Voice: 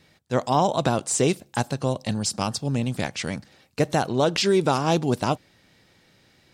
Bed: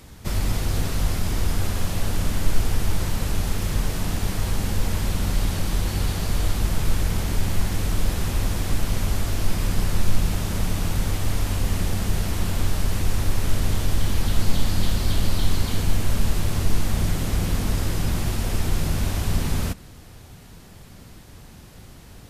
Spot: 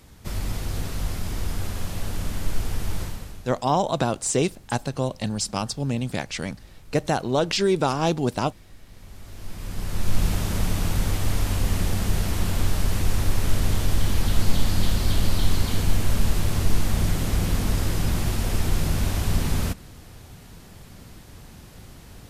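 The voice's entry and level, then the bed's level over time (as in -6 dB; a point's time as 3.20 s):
3.15 s, -1.0 dB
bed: 3.02 s -5 dB
3.62 s -25.5 dB
8.84 s -25.5 dB
10.23 s 0 dB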